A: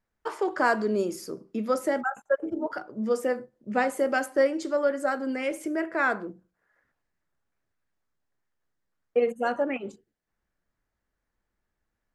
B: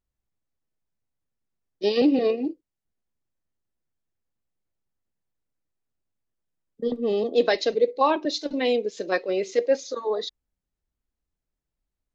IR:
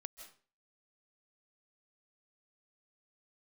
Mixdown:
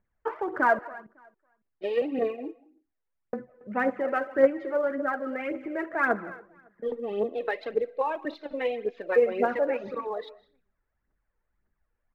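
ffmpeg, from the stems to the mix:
-filter_complex "[0:a]volume=-4.5dB,asplit=3[a][b][c];[a]atrim=end=0.79,asetpts=PTS-STARTPTS,afade=t=out:st=0.786:d=0.004:c=hsin[d];[b]atrim=start=0.79:end=3.33,asetpts=PTS-STARTPTS,volume=0[e];[c]atrim=start=3.33,asetpts=PTS-STARTPTS,afade=t=in:d=0.004:c=hsin[f];[d][e][f]concat=n=3:v=0:a=1,asplit=3[g][h][i];[h]volume=-3.5dB[j];[i]volume=-16.5dB[k];[1:a]lowshelf=f=390:g=-11.5,acompressor=threshold=-27dB:ratio=6,volume=-1.5dB,asplit=2[l][m];[m]volume=-5dB[n];[2:a]atrim=start_sample=2205[o];[j][n]amix=inputs=2:normalize=0[p];[p][o]afir=irnorm=-1:irlink=0[q];[k]aecho=0:1:277|554|831:1|0.2|0.04[r];[g][l][q][r]amix=inputs=4:normalize=0,lowpass=f=2.3k:w=0.5412,lowpass=f=2.3k:w=1.3066,aphaser=in_gain=1:out_gain=1:delay=2.4:decay=0.57:speed=1.8:type=triangular"

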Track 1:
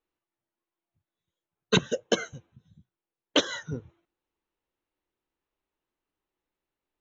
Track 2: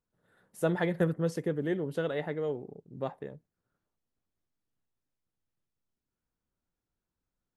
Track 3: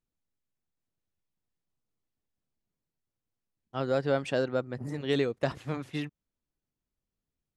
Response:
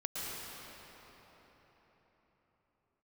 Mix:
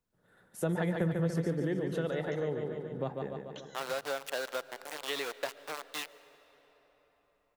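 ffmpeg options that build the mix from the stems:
-filter_complex "[0:a]acompressor=threshold=-41dB:ratio=2,highshelf=f=5.8k:g=9,adelay=200,volume=-16.5dB[a];[1:a]volume=2dB,asplit=3[b][c][d];[c]volume=-22.5dB[e];[d]volume=-6dB[f];[2:a]highshelf=f=6.1k:g=5.5,aeval=exprs='val(0)*gte(abs(val(0)),0.0282)':c=same,highpass=670,volume=0.5dB,asplit=2[g][h];[h]volume=-21dB[i];[3:a]atrim=start_sample=2205[j];[e][i]amix=inputs=2:normalize=0[k];[k][j]afir=irnorm=-1:irlink=0[l];[f]aecho=0:1:144|288|432|576|720|864|1008|1152|1296:1|0.57|0.325|0.185|0.106|0.0602|0.0343|0.0195|0.0111[m];[a][b][g][l][m]amix=inputs=5:normalize=0,acrossover=split=160[n][o];[o]acompressor=threshold=-32dB:ratio=3[p];[n][p]amix=inputs=2:normalize=0"

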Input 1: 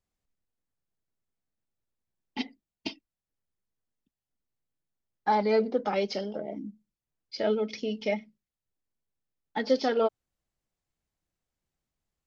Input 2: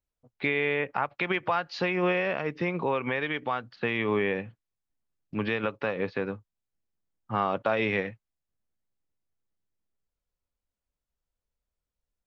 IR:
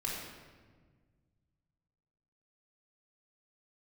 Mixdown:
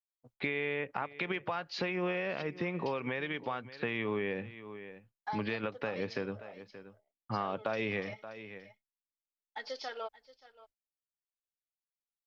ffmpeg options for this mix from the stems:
-filter_complex "[0:a]highpass=870,volume=-6.5dB,asplit=2[a][b];[b]volume=-19dB[c];[1:a]volume=0.5dB,asplit=2[d][e];[e]volume=-20.5dB[f];[c][f]amix=inputs=2:normalize=0,aecho=0:1:577:1[g];[a][d][g]amix=inputs=3:normalize=0,agate=range=-33dB:threshold=-57dB:ratio=3:detection=peak,adynamicequalizer=threshold=0.0126:dfrequency=1100:dqfactor=0.77:tfrequency=1100:tqfactor=0.77:attack=5:release=100:ratio=0.375:range=2:mode=cutabove:tftype=bell,acompressor=threshold=-36dB:ratio=2"

